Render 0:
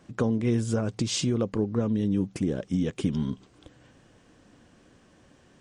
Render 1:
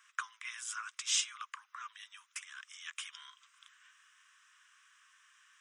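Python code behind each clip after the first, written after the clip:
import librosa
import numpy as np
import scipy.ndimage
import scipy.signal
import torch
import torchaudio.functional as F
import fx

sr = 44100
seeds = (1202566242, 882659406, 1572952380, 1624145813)

y = scipy.signal.sosfilt(scipy.signal.butter(12, 1100.0, 'highpass', fs=sr, output='sos'), x)
y = fx.peak_eq(y, sr, hz=4400.0, db=-14.0, octaves=0.21)
y = y * librosa.db_to_amplitude(1.0)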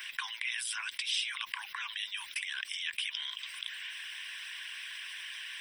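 y = fx.hpss(x, sr, part='harmonic', gain_db=-15)
y = fx.fixed_phaser(y, sr, hz=3000.0, stages=4)
y = fx.env_flatten(y, sr, amount_pct=70)
y = y * librosa.db_to_amplitude(4.5)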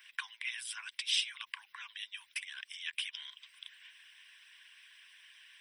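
y = fx.upward_expand(x, sr, threshold_db=-47.0, expansion=2.5)
y = y * librosa.db_to_amplitude(3.0)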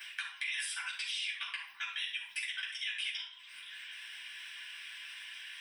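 y = fx.level_steps(x, sr, step_db=23)
y = fx.room_shoebox(y, sr, seeds[0], volume_m3=490.0, walls='furnished', distance_m=8.1)
y = fx.band_squash(y, sr, depth_pct=70)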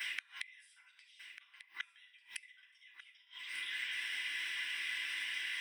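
y = fx.small_body(x, sr, hz=(330.0, 2000.0), ring_ms=35, db=14)
y = fx.gate_flip(y, sr, shuts_db=-31.0, range_db=-31)
y = y + 10.0 ** (-13.0 / 20.0) * np.pad(y, (int(1194 * sr / 1000.0), 0))[:len(y)]
y = y * librosa.db_to_amplitude(4.5)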